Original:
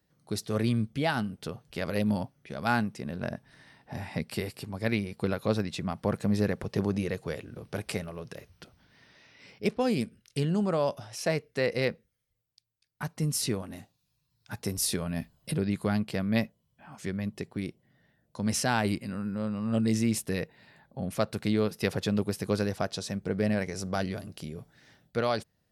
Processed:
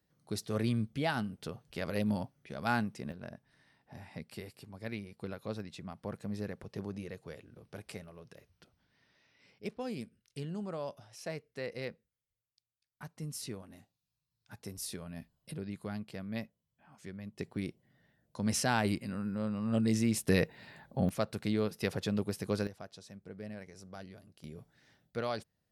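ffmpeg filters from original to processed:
ffmpeg -i in.wav -af "asetnsamples=nb_out_samples=441:pad=0,asendcmd='3.12 volume volume -12dB;17.39 volume volume -3dB;20.28 volume volume 4dB;21.09 volume volume -5dB;22.67 volume volume -17dB;24.44 volume volume -7.5dB',volume=-4.5dB" out.wav

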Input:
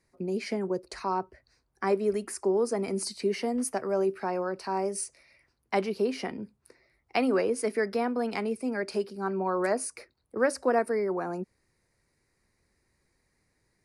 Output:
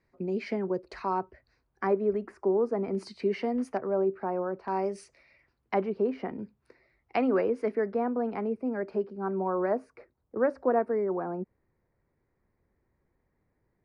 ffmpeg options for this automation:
ffmpeg -i in.wav -af "asetnsamples=nb_out_samples=441:pad=0,asendcmd='1.87 lowpass f 1400;2.95 lowpass f 2700;3.77 lowpass f 1200;4.68 lowpass f 3200;5.74 lowpass f 1400;6.39 lowpass f 3200;7.16 lowpass f 1900;7.75 lowpass f 1200',lowpass=3000" out.wav

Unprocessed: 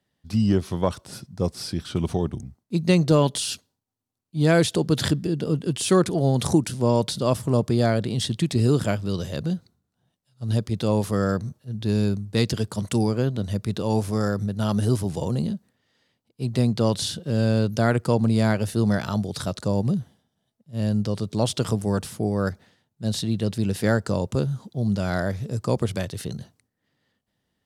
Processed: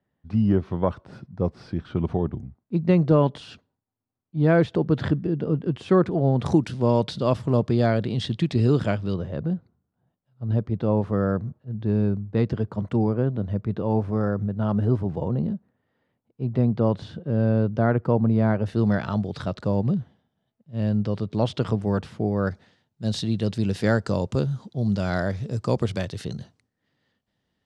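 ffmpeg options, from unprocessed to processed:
ffmpeg -i in.wav -af "asetnsamples=nb_out_samples=441:pad=0,asendcmd='6.46 lowpass f 3400;9.14 lowpass f 1400;18.66 lowpass f 2800;22.51 lowpass f 5800',lowpass=1700" out.wav

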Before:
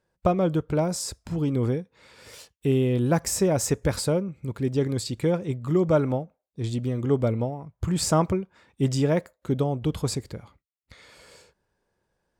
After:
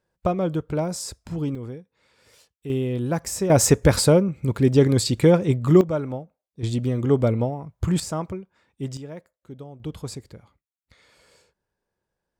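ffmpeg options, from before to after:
ffmpeg -i in.wav -af "asetnsamples=nb_out_samples=441:pad=0,asendcmd='1.55 volume volume -10dB;2.7 volume volume -2.5dB;3.5 volume volume 8dB;5.81 volume volume -4.5dB;6.63 volume volume 3.5dB;8 volume volume -7dB;8.97 volume volume -15dB;9.8 volume volume -6.5dB',volume=-1dB" out.wav

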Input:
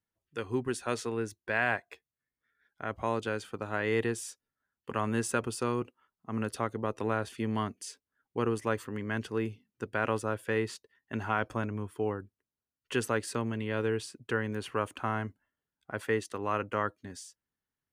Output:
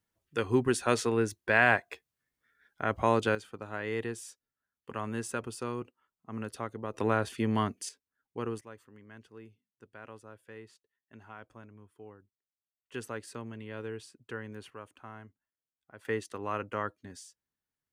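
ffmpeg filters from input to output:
ffmpeg -i in.wav -af "asetnsamples=nb_out_samples=441:pad=0,asendcmd='3.35 volume volume -5dB;6.94 volume volume 3dB;7.89 volume volume -5.5dB;8.61 volume volume -18dB;12.94 volume volume -9dB;14.7 volume volume -15dB;16.05 volume volume -3dB',volume=5.5dB" out.wav

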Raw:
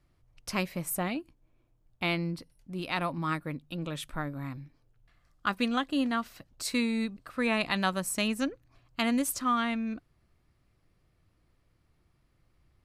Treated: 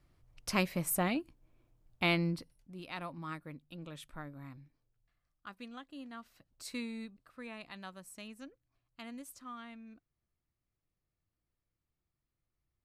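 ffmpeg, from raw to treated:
ffmpeg -i in.wav -af "volume=8dB,afade=type=out:start_time=2.29:duration=0.45:silence=0.281838,afade=type=out:start_time=4.61:duration=0.88:silence=0.398107,afade=type=in:start_time=6.06:duration=0.68:silence=0.398107,afade=type=out:start_time=6.74:duration=0.78:silence=0.398107" out.wav

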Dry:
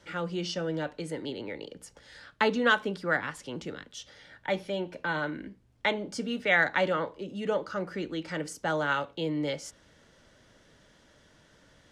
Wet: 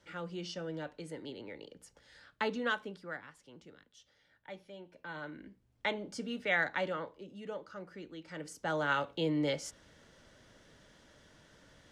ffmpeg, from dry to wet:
ffmpeg -i in.wav -af "volume=14.5dB,afade=type=out:start_time=2.56:duration=0.69:silence=0.354813,afade=type=in:start_time=4.88:duration=0.98:silence=0.281838,afade=type=out:start_time=6.49:duration=1.03:silence=0.473151,afade=type=in:start_time=8.25:duration=0.92:silence=0.251189" out.wav

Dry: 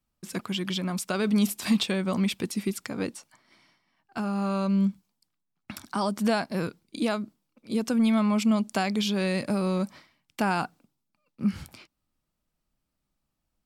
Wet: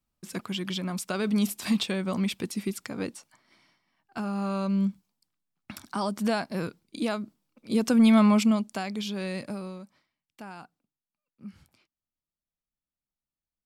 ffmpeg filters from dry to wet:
ffmpeg -i in.wav -af "volume=5dB,afade=type=in:start_time=7.2:duration=1.05:silence=0.446684,afade=type=out:start_time=8.25:duration=0.43:silence=0.281838,afade=type=out:start_time=9.4:duration=0.42:silence=0.281838" out.wav

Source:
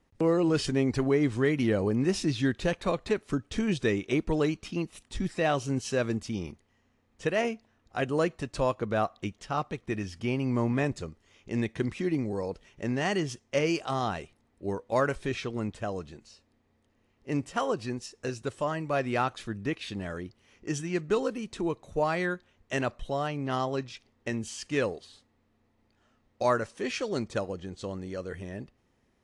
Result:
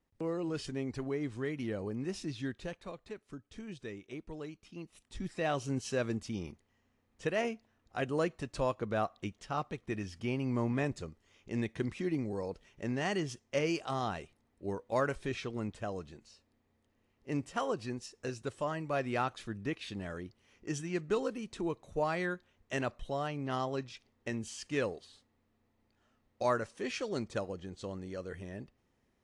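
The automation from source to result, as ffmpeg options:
ffmpeg -i in.wav -af "volume=1dB,afade=type=out:start_time=2.48:duration=0.45:silence=0.501187,afade=type=in:start_time=4.66:duration=1.01:silence=0.251189" out.wav

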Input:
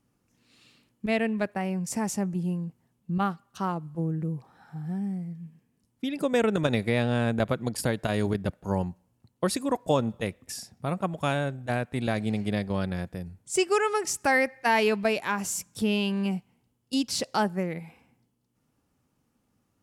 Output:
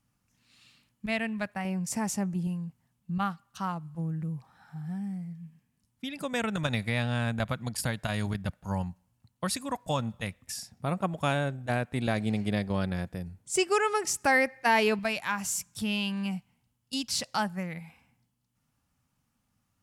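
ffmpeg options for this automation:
ffmpeg -i in.wav -af "asetnsamples=nb_out_samples=441:pad=0,asendcmd='1.65 equalizer g -6;2.47 equalizer g -14;10.72 equalizer g -2.5;14.99 equalizer g -14.5',equalizer=frequency=390:width_type=o:width=1.2:gain=-14" out.wav

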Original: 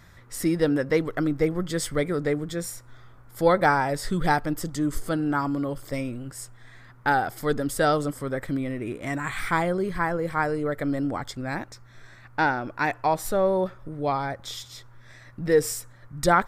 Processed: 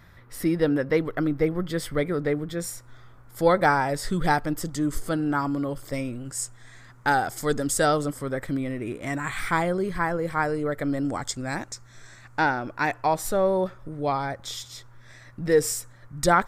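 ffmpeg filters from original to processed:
ffmpeg -i in.wav -af "asetnsamples=nb_out_samples=441:pad=0,asendcmd='2.6 equalizer g 1.5;6.25 equalizer g 11;7.86 equalizer g 2;11.05 equalizer g 13;12.39 equalizer g 3.5',equalizer=frequency=7200:width_type=o:width=0.91:gain=-9" out.wav

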